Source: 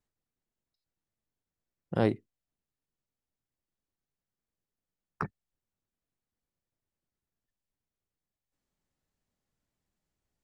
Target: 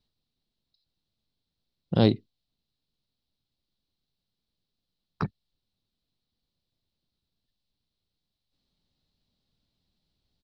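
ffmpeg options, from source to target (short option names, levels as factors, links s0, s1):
-af "firequalizer=gain_entry='entry(230,0);entry(340,-4);entry(1800,-10);entry(4000,11);entry(6700,-13)':delay=0.05:min_phase=1,volume=2.51"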